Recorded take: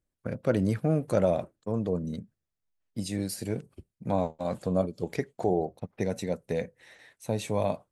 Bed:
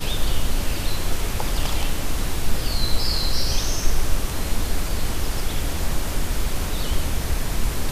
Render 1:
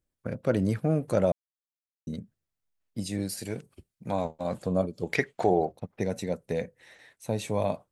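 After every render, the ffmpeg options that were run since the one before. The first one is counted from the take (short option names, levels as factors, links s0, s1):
-filter_complex "[0:a]asettb=1/sr,asplit=3[s0][s1][s2];[s0]atrim=end=3.374[s3];[s1]atrim=start=3.37:end=4.25,asetpts=PTS-STARTPTS,afade=t=in:d=0.004:c=qsin,afade=t=out:st=0.876:d=0.004:c=qsin,tiltshelf=f=970:g=-4[s4];[s2]atrim=start=4.246[s5];[s3][s4]acrossfade=d=0.004:c1=hsin:c2=qsin[s6];[s6][s5]acrossfade=d=0.004:c1=qsin:c2=hsin,asettb=1/sr,asplit=3[s7][s8][s9];[s7]atrim=end=5.134[s10];[s8]atrim=start=5.13:end=5.72,asetpts=PTS-STARTPTS,afade=t=in:d=0.004:c=qsin,afade=t=out:st=0.586:d=0.004:c=qsin,equalizer=f=2200:t=o:w=2.7:g=13[s11];[s9]atrim=start=5.716[s12];[s10][s11]acrossfade=d=0.004:c1=hsin:c2=qsin[s13];[s13][s12]acrossfade=d=0.004:c1=qsin:c2=hsin,asplit=3[s14][s15][s16];[s14]atrim=end=1.32,asetpts=PTS-STARTPTS,afade=t=out:st=1.316:d=0.004:c=hsin[s17];[s15]atrim=start=1.32:end=2.07,asetpts=PTS-STARTPTS,volume=0[s18];[s16]atrim=start=2.07,asetpts=PTS-STARTPTS,afade=t=in:d=0.004:c=hsin[s19];[s17][s18][s19]concat=n=3:v=0:a=1"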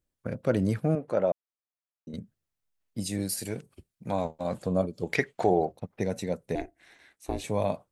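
-filter_complex "[0:a]asettb=1/sr,asplit=3[s0][s1][s2];[s0]atrim=end=0.954[s3];[s1]atrim=start=0.95:end=2.14,asetpts=PTS-STARTPTS,afade=t=in:d=0.004:c=qsin,afade=t=out:st=1.186:d=0.004:c=qsin,bandpass=f=810:t=q:w=0.53[s4];[s2]atrim=start=2.136[s5];[s3][s4]acrossfade=d=0.004:c1=hsin:c2=qsin[s6];[s6][s5]acrossfade=d=0.004:c1=qsin:c2=hsin,asettb=1/sr,asplit=3[s7][s8][s9];[s7]atrim=end=3.004[s10];[s8]atrim=start=3:end=3.5,asetpts=PTS-STARTPTS,afade=t=in:d=0.004:c=qsin,afade=t=out:st=0.496:d=0.004:c=qsin,highshelf=f=8400:g=9[s11];[s9]atrim=start=3.496[s12];[s10][s11]acrossfade=d=0.004:c1=hsin:c2=qsin[s13];[s13][s12]acrossfade=d=0.004:c1=qsin:c2=hsin,asettb=1/sr,asplit=3[s14][s15][s16];[s14]atrim=end=6.554[s17];[s15]atrim=start=6.55:end=7.44,asetpts=PTS-STARTPTS,afade=t=in:d=0.004:c=qsin,afade=t=out:st=0.886:d=0.004:c=qsin,aeval=exprs='val(0)*sin(2*PI*190*n/s)':c=same[s18];[s16]atrim=start=7.436[s19];[s17][s18]acrossfade=d=0.004:c1=hsin:c2=qsin[s20];[s20][s19]acrossfade=d=0.004:c1=qsin:c2=hsin"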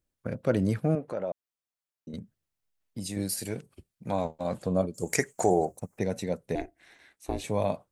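-filter_complex "[0:a]asettb=1/sr,asplit=3[s0][s1][s2];[s0]atrim=end=1.014[s3];[s1]atrim=start=1.01:end=3.17,asetpts=PTS-STARTPTS,afade=t=in:d=0.004:c=qsin,afade=t=out:st=2.156:d=0.004:c=qsin,acompressor=threshold=0.0224:ratio=2:attack=3.2:release=140:knee=1:detection=peak[s4];[s2]atrim=start=3.166[s5];[s3][s4]acrossfade=d=0.004:c1=hsin:c2=qsin[s6];[s6][s5]acrossfade=d=0.004:c1=qsin:c2=hsin,asettb=1/sr,asplit=3[s7][s8][s9];[s7]atrim=end=4.944[s10];[s8]atrim=start=4.94:end=5.99,asetpts=PTS-STARTPTS,afade=t=in:d=0.004:c=qsin,afade=t=out:st=1.046:d=0.004:c=qsin,highshelf=f=5200:t=q:w=3:g=13[s11];[s9]atrim=start=5.986[s12];[s10][s11]acrossfade=d=0.004:c1=hsin:c2=qsin[s13];[s13][s12]acrossfade=d=0.004:c1=qsin:c2=hsin"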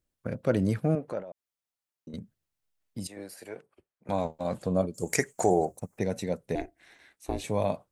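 -filter_complex "[0:a]asettb=1/sr,asplit=3[s0][s1][s2];[s0]atrim=end=1.204[s3];[s1]atrim=start=1.2:end=2.14,asetpts=PTS-STARTPTS,afade=t=in:d=0.004:c=qsin,afade=t=out:st=0.936:d=0.004:c=qsin,acompressor=threshold=0.0112:ratio=6:attack=3.2:release=140:knee=1:detection=peak[s4];[s2]atrim=start=2.136[s5];[s3][s4]acrossfade=d=0.004:c1=hsin:c2=qsin[s6];[s6][s5]acrossfade=d=0.004:c1=qsin:c2=hsin,asettb=1/sr,asplit=3[s7][s8][s9];[s7]atrim=end=3.074[s10];[s8]atrim=start=3.07:end=4.09,asetpts=PTS-STARTPTS,afade=t=in:d=0.004:c=qsin,afade=t=out:st=1.016:d=0.004:c=qsin,acrossover=split=400 2200:gain=0.1 1 0.158[s11][s12][s13];[s11][s12][s13]amix=inputs=3:normalize=0[s14];[s9]atrim=start=4.086[s15];[s10][s14]acrossfade=d=0.004:c1=hsin:c2=qsin[s16];[s16][s15]acrossfade=d=0.004:c1=qsin:c2=hsin"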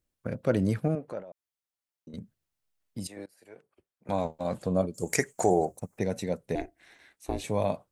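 -filter_complex "[0:a]asplit=4[s0][s1][s2][s3];[s0]atrim=end=0.882[s4];[s1]atrim=start=0.878:end=2.172,asetpts=PTS-STARTPTS,volume=0.708[s5];[s2]atrim=start=2.168:end=3.26,asetpts=PTS-STARTPTS,afade=t=out:st=1.088:d=0.004:c=hsin:silence=0.0630957[s6];[s3]atrim=start=3.26,asetpts=PTS-STARTPTS,afade=t=in:d=0.85:silence=0.0630957[s7];[s4][s5]acrossfade=d=0.004:c1=hsin:c2=hsin[s8];[s6][s7]concat=n=2:v=0:a=1[s9];[s8][s9]acrossfade=d=0.004:c1=hsin:c2=hsin"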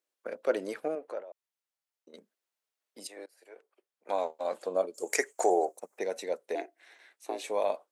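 -af "highpass=f=380:w=0.5412,highpass=f=380:w=1.3066,highshelf=f=8200:g=-4.5"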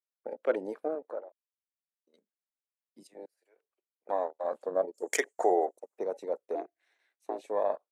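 -af "afwtdn=0.0112,highpass=150"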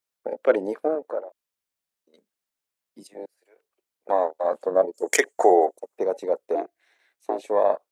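-af "volume=2.82"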